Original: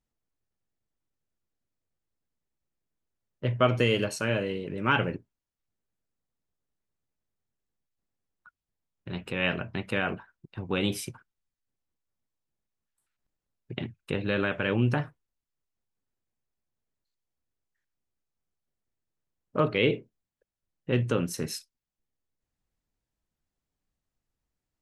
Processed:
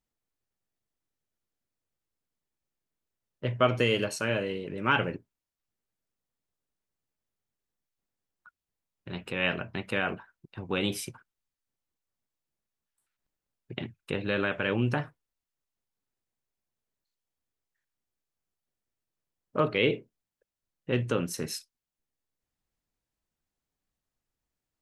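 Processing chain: low shelf 230 Hz -4.5 dB

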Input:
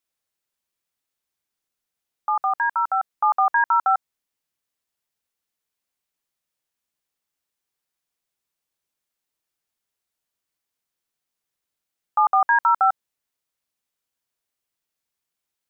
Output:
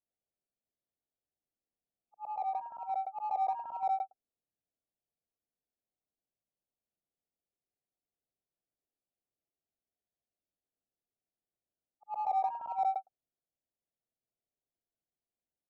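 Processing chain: short-time reversal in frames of 0.221 s; elliptic low-pass 730 Hz, stop band 80 dB; in parallel at -11.5 dB: soft clip -38 dBFS, distortion -6 dB; on the sum: gain -2 dB

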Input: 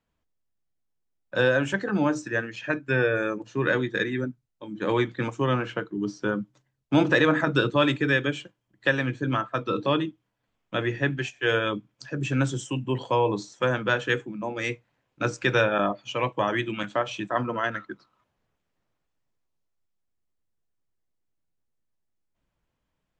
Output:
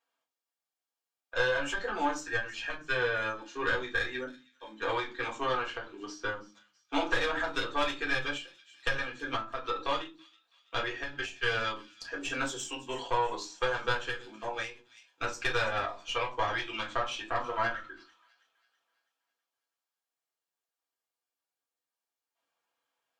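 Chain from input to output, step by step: HPF 710 Hz 12 dB/oct; notch 2000 Hz, Q 12; tube stage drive 18 dB, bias 0.65; compressor 3:1, threshold -32 dBFS, peak gain reduction 7.5 dB; thin delay 0.327 s, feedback 45%, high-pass 3400 Hz, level -16 dB; reverb RT60 0.25 s, pre-delay 3 ms, DRR -3.5 dB; ending taper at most 130 dB/s

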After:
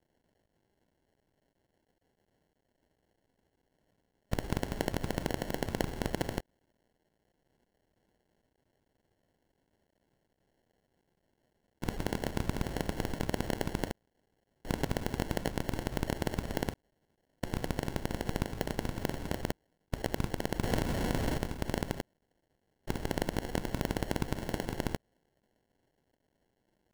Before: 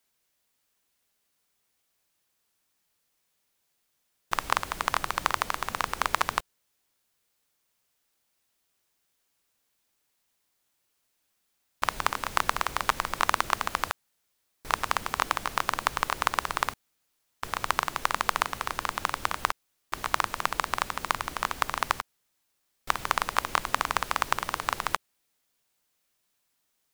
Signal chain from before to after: 20.63–21.38 zero-crossing step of -30.5 dBFS; bit-crush 12-bit; envelope flanger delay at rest 11.3 ms, full sweep at -27.5 dBFS; sample-and-hold 36×; limiter -19.5 dBFS, peak gain reduction 10 dB; gain +3 dB

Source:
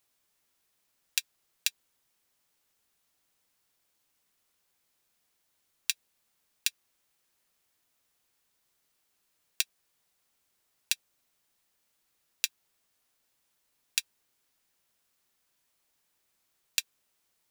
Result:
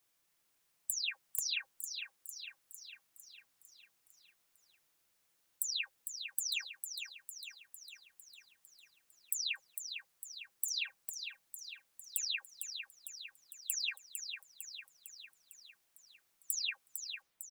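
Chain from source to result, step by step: spectral delay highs early, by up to 0.281 s; on a send: feedback echo 0.453 s, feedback 58%, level -7 dB; on the sum: gain -1.5 dB

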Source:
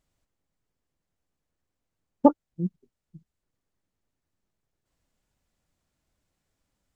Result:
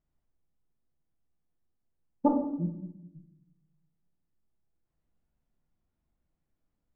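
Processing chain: LPF 1000 Hz 6 dB/oct; notch 540 Hz, Q 13; shoebox room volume 250 m³, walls mixed, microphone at 0.88 m; gain -6 dB

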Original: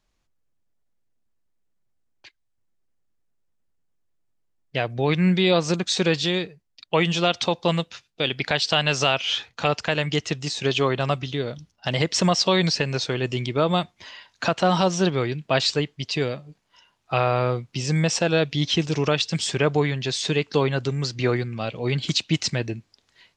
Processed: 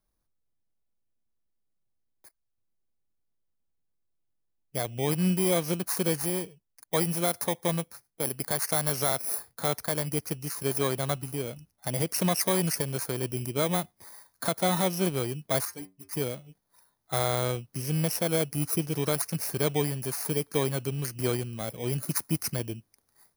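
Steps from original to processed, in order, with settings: FFT order left unsorted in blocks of 16 samples; 15.65–16.13 metallic resonator 91 Hz, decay 0.3 s, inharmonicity 0.008; gain -6 dB

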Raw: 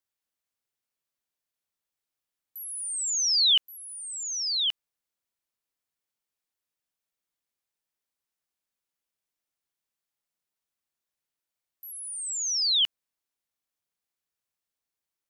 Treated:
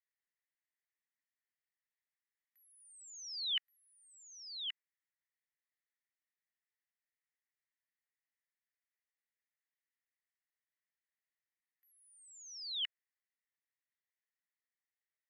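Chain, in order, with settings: band-pass 1900 Hz, Q 8.1; gain +5 dB

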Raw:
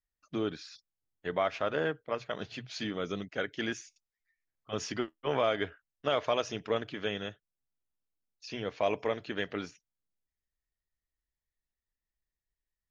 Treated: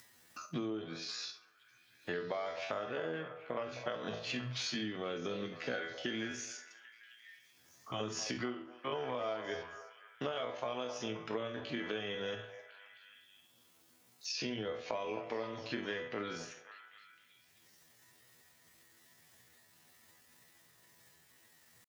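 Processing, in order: in parallel at -2.5 dB: upward compressor, threshold -32 dBFS; on the sum: HPF 110 Hz 24 dB/oct; resonator bank E2 sus4, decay 0.22 s; tempo 0.59×; compressor 12:1, threshold -46 dBFS, peak gain reduction 20 dB; on a send: delay with a stepping band-pass 0.264 s, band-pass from 700 Hz, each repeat 0.7 oct, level -8 dB; on the sum: gain +11 dB

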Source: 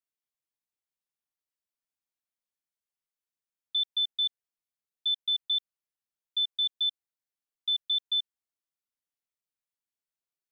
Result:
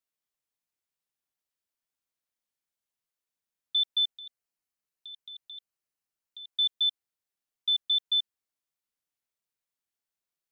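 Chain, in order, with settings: 4.11–6.52 notch 3500 Hz, Q 9.2; gain +2 dB

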